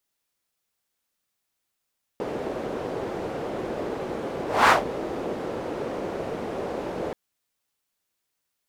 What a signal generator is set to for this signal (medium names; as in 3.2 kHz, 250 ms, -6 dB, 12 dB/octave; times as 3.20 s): whoosh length 4.93 s, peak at 2.49 s, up 0.24 s, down 0.16 s, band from 450 Hz, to 1.2 kHz, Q 1.7, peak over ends 15 dB